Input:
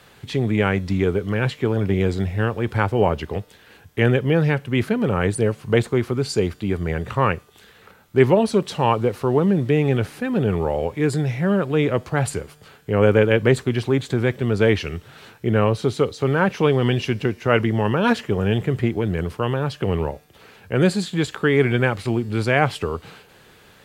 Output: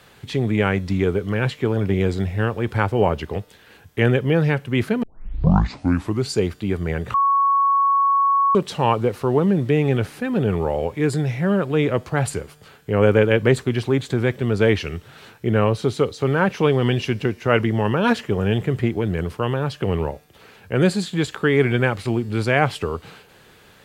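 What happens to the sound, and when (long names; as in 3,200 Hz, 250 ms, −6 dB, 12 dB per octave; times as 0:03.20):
0:05.03: tape start 1.26 s
0:07.14–0:08.55: beep over 1,110 Hz −14 dBFS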